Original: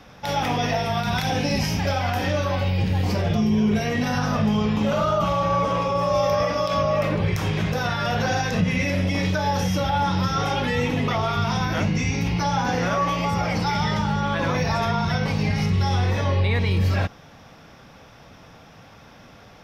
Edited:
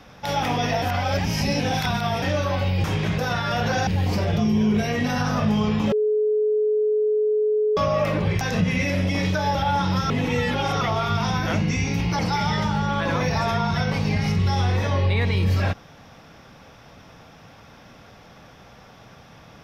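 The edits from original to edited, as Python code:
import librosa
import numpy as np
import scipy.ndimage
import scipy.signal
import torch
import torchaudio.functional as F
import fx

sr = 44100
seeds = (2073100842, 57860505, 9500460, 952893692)

y = fx.edit(x, sr, fx.reverse_span(start_s=0.82, length_s=1.4),
    fx.bleep(start_s=4.89, length_s=1.85, hz=426.0, db=-17.5),
    fx.move(start_s=7.38, length_s=1.03, to_s=2.84),
    fx.cut(start_s=9.55, length_s=0.27),
    fx.reverse_span(start_s=10.37, length_s=0.71),
    fx.cut(start_s=12.46, length_s=1.07), tone=tone)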